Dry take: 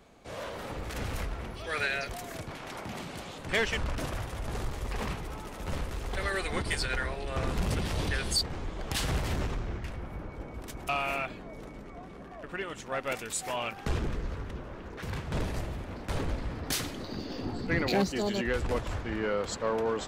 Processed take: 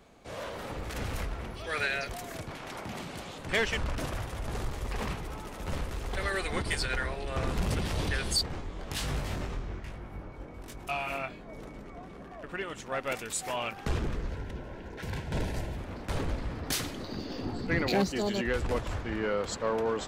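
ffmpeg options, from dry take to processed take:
ffmpeg -i in.wav -filter_complex "[0:a]asplit=3[link_01][link_02][link_03];[link_01]afade=type=out:start_time=8.6:duration=0.02[link_04];[link_02]flanger=delay=20:depth=3.1:speed=1.1,afade=type=in:start_time=8.6:duration=0.02,afade=type=out:start_time=11.47:duration=0.02[link_05];[link_03]afade=type=in:start_time=11.47:duration=0.02[link_06];[link_04][link_05][link_06]amix=inputs=3:normalize=0,asettb=1/sr,asplit=3[link_07][link_08][link_09];[link_07]atrim=end=14.294[link_10];[link_08]atrim=start=14.29:end=15.77,asetpts=PTS-STARTPTS,afade=type=in:duration=0.004:curve=qsin,afade=type=out:start_time=1.476:duration=0.004:curve=qsin,asuperstop=centerf=1200:order=12:qfactor=5.6[link_11];[link_09]atrim=start=15.766[link_12];[link_10][link_11]acrossfade=duration=0.004:curve1=hsin:curve2=qsin[link_13];[link_13][link_12]acrossfade=duration=0.004:curve1=qsin:curve2=hsin" out.wav

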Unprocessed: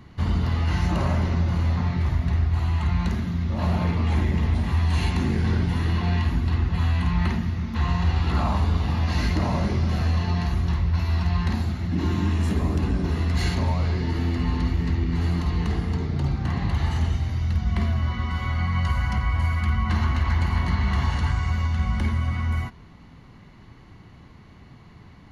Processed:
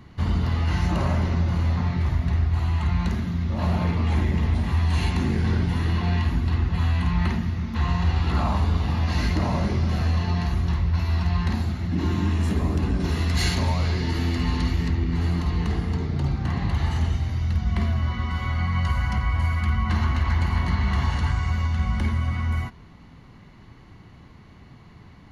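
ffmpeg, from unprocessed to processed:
ffmpeg -i in.wav -filter_complex "[0:a]asettb=1/sr,asplit=3[link_01][link_02][link_03];[link_01]atrim=end=13.004[link_04];[link_02]atrim=start=13:end=14.88,asetpts=PTS-STARTPTS,afade=type=in:duration=0.004:curve=qsin,afade=type=out:start_time=1.876:duration=0.004:curve=qsin,highshelf=frequency=2300:gain=8[link_05];[link_03]atrim=start=14.876[link_06];[link_04][link_05]acrossfade=duration=0.004:curve1=hsin:curve2=qsin[link_07];[link_07][link_06]acrossfade=duration=0.004:curve1=qsin:curve2=hsin" out.wav

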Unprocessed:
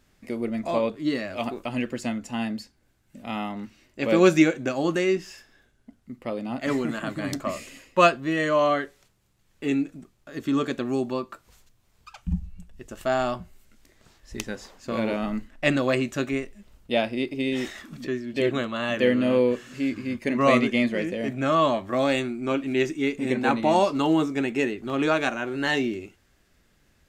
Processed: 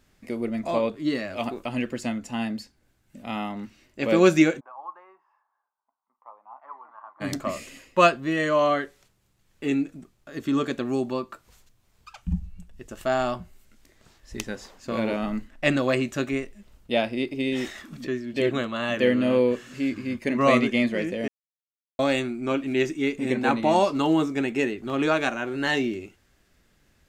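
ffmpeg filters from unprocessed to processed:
ffmpeg -i in.wav -filter_complex "[0:a]asplit=3[link_01][link_02][link_03];[link_01]afade=type=out:start_time=4.59:duration=0.02[link_04];[link_02]asuperpass=centerf=980:order=4:qfactor=3.5,afade=type=in:start_time=4.59:duration=0.02,afade=type=out:start_time=7.2:duration=0.02[link_05];[link_03]afade=type=in:start_time=7.2:duration=0.02[link_06];[link_04][link_05][link_06]amix=inputs=3:normalize=0,asplit=3[link_07][link_08][link_09];[link_07]atrim=end=21.28,asetpts=PTS-STARTPTS,afade=type=out:start_time=21.276:duration=0.004:curve=hsin[link_10];[link_08]atrim=start=21.28:end=21.99,asetpts=PTS-STARTPTS,volume=0[link_11];[link_09]atrim=start=21.99,asetpts=PTS-STARTPTS,afade=type=in:duration=0.004:curve=hsin[link_12];[link_10][link_11][link_12]concat=n=3:v=0:a=1" out.wav

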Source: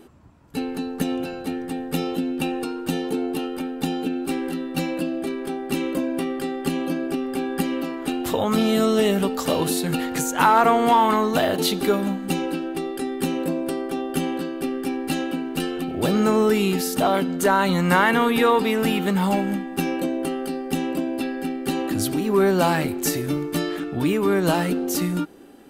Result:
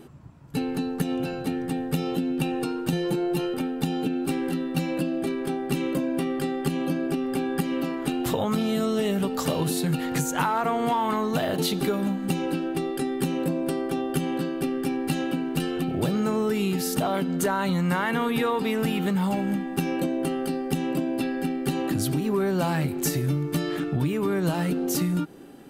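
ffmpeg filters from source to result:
ffmpeg -i in.wav -filter_complex "[0:a]asettb=1/sr,asplit=3[link_01][link_02][link_03];[link_01]atrim=end=2.924[link_04];[link_02]atrim=start=2.92:end=3.54,asetpts=PTS-STARTPTS,afade=type=in:duration=0.004:curve=qsin,afade=type=out:start_time=0.616:duration=0.004:curve=qsin,aecho=1:1:5.8:0.92,atrim=end_sample=27342[link_05];[link_03]atrim=start=3.536[link_06];[link_04][link_05]acrossfade=duration=0.004:curve1=hsin:curve2=qsin[link_07];[link_07][link_06]acrossfade=duration=0.004:curve1=qsin:curve2=hsin,equalizer=frequency=140:width_type=o:width=0.53:gain=12.5,acompressor=threshold=-22dB:ratio=5" out.wav

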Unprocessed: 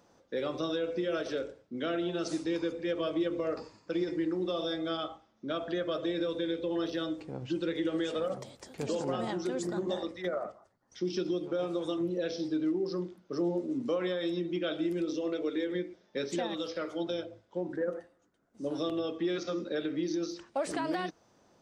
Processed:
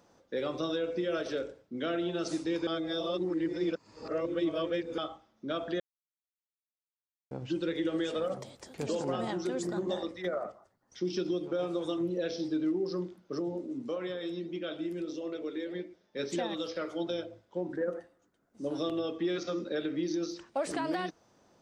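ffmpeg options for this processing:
ffmpeg -i in.wav -filter_complex "[0:a]asettb=1/sr,asplit=3[link_01][link_02][link_03];[link_01]atrim=end=13.394[link_04];[link_02]atrim=start=13.39:end=16.19,asetpts=PTS-STARTPTS,afade=type=in:duration=0.004:curve=qsin,afade=type=out:start_time=2.796:duration=0.004:curve=qsin,flanger=delay=2.1:depth=7.5:regen=-88:speed=1.6:shape=sinusoidal[link_05];[link_03]atrim=start=16.186[link_06];[link_04][link_05]acrossfade=duration=0.004:curve1=hsin:curve2=qsin[link_07];[link_07][link_06]acrossfade=duration=0.004:curve1=qsin:curve2=hsin,asplit=5[link_08][link_09][link_10][link_11][link_12];[link_08]atrim=end=2.672[link_13];[link_09]atrim=start=2.668:end=4.982,asetpts=PTS-STARTPTS,areverse[link_14];[link_10]atrim=start=4.978:end=5.8,asetpts=PTS-STARTPTS,afade=type=out:start_time=0.818:duration=0.004:curve=hsin[link_15];[link_11]atrim=start=5.8:end=7.31,asetpts=PTS-STARTPTS,volume=0[link_16];[link_12]atrim=start=7.31,asetpts=PTS-STARTPTS,afade=type=in:duration=0.004:curve=hsin[link_17];[link_13][link_14]acrossfade=duration=0.004:curve1=hsin:curve2=hsin[link_18];[link_15][link_16][link_17]concat=n=3:v=0:a=1[link_19];[link_18][link_19]acrossfade=duration=0.004:curve1=hsin:curve2=hsin" out.wav

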